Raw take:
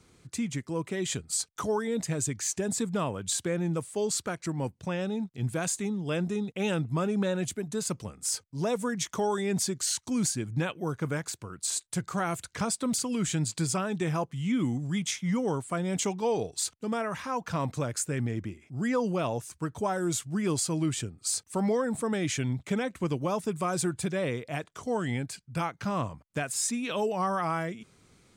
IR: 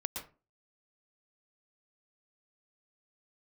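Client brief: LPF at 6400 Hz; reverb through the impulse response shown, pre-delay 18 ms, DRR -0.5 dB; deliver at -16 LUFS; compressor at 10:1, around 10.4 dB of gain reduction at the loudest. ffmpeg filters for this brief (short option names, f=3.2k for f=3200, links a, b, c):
-filter_complex "[0:a]lowpass=6.4k,acompressor=threshold=-35dB:ratio=10,asplit=2[a][b];[1:a]atrim=start_sample=2205,adelay=18[c];[b][c]afir=irnorm=-1:irlink=0,volume=-0.5dB[d];[a][d]amix=inputs=2:normalize=0,volume=20dB"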